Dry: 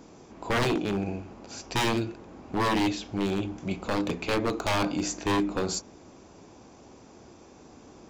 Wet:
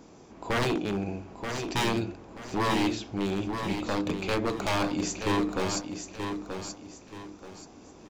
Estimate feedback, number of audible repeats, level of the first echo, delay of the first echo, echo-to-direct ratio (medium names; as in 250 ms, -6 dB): 32%, 3, -7.0 dB, 930 ms, -6.5 dB